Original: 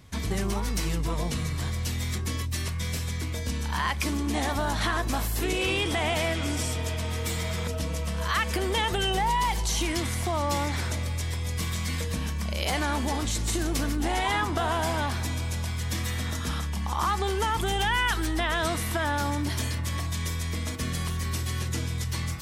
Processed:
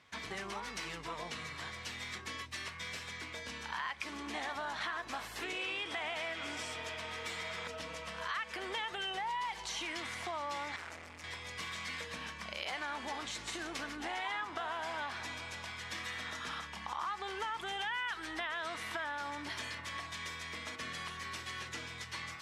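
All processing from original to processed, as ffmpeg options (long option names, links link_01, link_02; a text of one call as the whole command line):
ffmpeg -i in.wav -filter_complex "[0:a]asettb=1/sr,asplit=3[link_01][link_02][link_03];[link_01]atrim=end=10.764[link_04];[link_02]atrim=start=10.76:end=11.24,asetpts=PTS-STARTPTS,afade=type=in:duration=0.004:curve=qsin,afade=type=out:start_time=0.476:duration=0.004:curve=qsin,equalizer=frequency=3700:width_type=o:width=0.71:gain=-9.5,asoftclip=type=hard:threshold=-33dB[link_05];[link_03]atrim=start=11.236[link_06];[link_04][link_05]acrossfade=duration=0.004:curve1=hsin:curve2=qsin[link_07];[link_07][link_06]acrossfade=duration=0.004:curve1=qsin:curve2=hsin,lowpass=1800,aderivative,acompressor=threshold=-50dB:ratio=3,volume=13dB" out.wav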